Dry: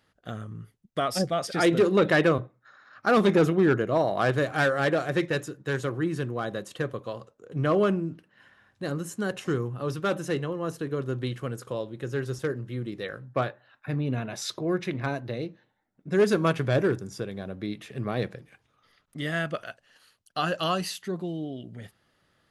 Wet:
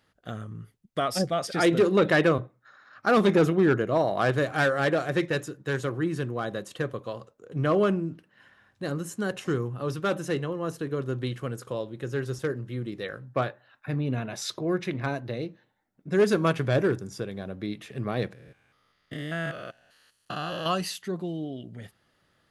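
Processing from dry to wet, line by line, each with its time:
18.33–20.66 s: spectrogram pixelated in time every 200 ms

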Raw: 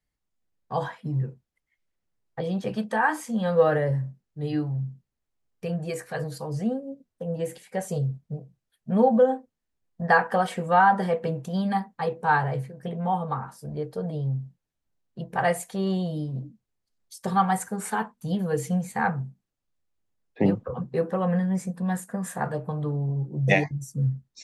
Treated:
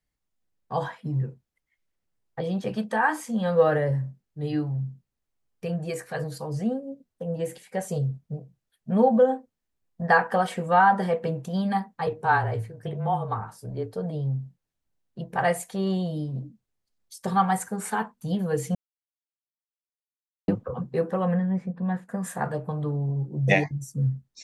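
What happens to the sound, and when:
12.07–13.96 s: frequency shift -22 Hz
18.75–20.48 s: mute
21.34–22.09 s: distance through air 350 m

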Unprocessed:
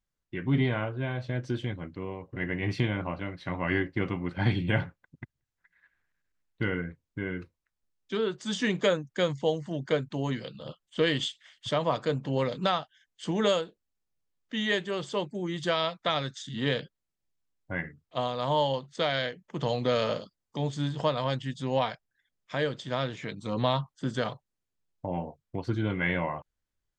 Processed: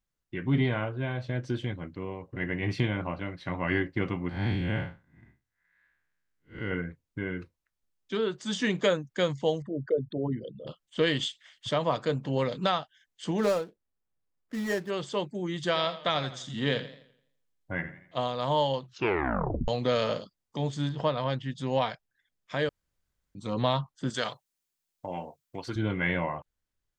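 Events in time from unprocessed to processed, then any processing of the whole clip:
4.29–6.71 s: spectral blur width 150 ms
9.62–10.67 s: resonances exaggerated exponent 3
13.38–14.90 s: median filter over 15 samples
15.66–18.24 s: modulated delay 84 ms, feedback 43%, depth 85 cents, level -13.5 dB
18.81 s: tape stop 0.87 s
20.89–21.58 s: distance through air 120 m
22.69–23.35 s: room tone
24.10–25.76 s: tilt EQ +3 dB/octave

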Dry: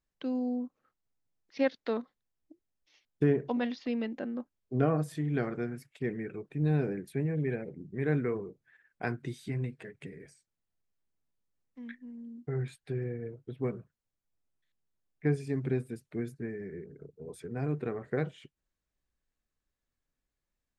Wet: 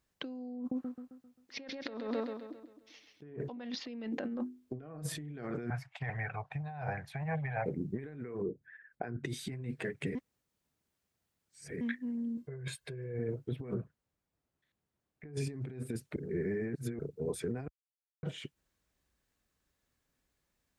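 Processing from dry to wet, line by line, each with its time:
0.58–3.28 s: modulated delay 132 ms, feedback 46%, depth 59 cents, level -6 dB
4.07–4.83 s: hum notches 50/100/150/200/250/300/350/400/450 Hz
5.70–7.66 s: FFT filter 130 Hz 0 dB, 220 Hz -24 dB, 380 Hz -27 dB, 740 Hz +13 dB, 1.3 kHz +3 dB, 6 kHz -7 dB, 9 kHz -16 dB
8.42–9.24 s: resonances exaggerated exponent 1.5
10.15–11.81 s: reverse
12.37–13.19 s: comb 1.9 ms
13.74–15.37 s: treble shelf 2.5 kHz -10 dB
16.16–16.99 s: reverse
17.68–18.23 s: mute
whole clip: high-pass 51 Hz; compressor with a negative ratio -41 dBFS, ratio -1; trim +2 dB

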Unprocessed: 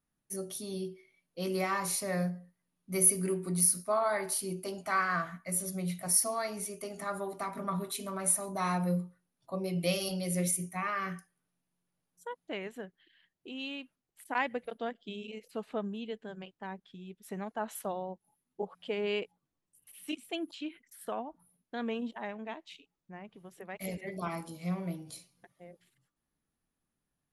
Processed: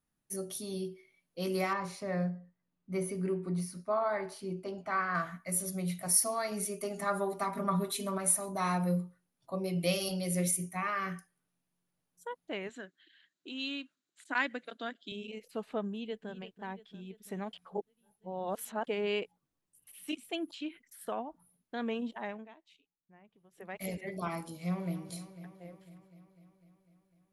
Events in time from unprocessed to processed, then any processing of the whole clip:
1.73–5.15 s: tape spacing loss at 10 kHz 21 dB
6.51–8.18 s: comb 5 ms
12.69–15.12 s: cabinet simulation 260–8100 Hz, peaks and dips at 290 Hz +6 dB, 460 Hz -8 dB, 820 Hz -9 dB, 1.5 kHz +6 dB, 3.9 kHz +9 dB, 7.1 kHz +8 dB
15.89–16.35 s: echo throw 340 ms, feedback 65%, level -14.5 dB
17.53–18.87 s: reverse
22.35–23.65 s: dip -13.5 dB, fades 0.13 s
24.54–25.03 s: echo throw 250 ms, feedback 70%, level -12 dB

